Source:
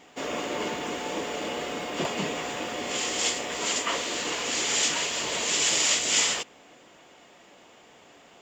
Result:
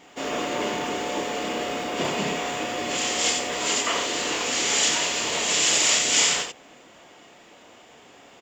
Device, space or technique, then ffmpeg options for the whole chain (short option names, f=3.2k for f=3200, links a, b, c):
slapback doubling: -filter_complex "[0:a]asplit=3[a][b][c];[b]adelay=29,volume=-5dB[d];[c]adelay=89,volume=-5.5dB[e];[a][d][e]amix=inputs=3:normalize=0,volume=1.5dB"